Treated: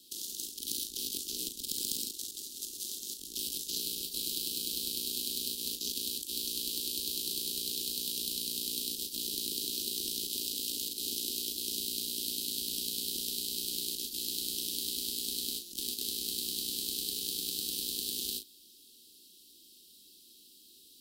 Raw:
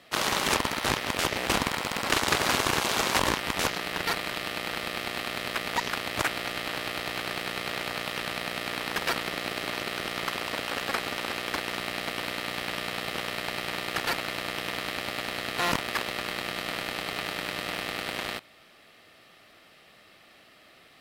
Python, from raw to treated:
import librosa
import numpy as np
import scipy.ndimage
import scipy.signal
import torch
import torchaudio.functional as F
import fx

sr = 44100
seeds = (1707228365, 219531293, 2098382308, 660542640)

y = fx.over_compress(x, sr, threshold_db=-32.0, ratio=-0.5)
y = scipy.signal.sosfilt(scipy.signal.cheby2(4, 40, [650.0, 2200.0], 'bandstop', fs=sr, output='sos'), y)
y = scipy.signal.lfilter([1.0, -0.8], [1.0], y)
y = fx.fixed_phaser(y, sr, hz=310.0, stages=4)
y = fx.doubler(y, sr, ms=38.0, db=-8.0)
y = F.gain(torch.from_numpy(y), 6.5).numpy()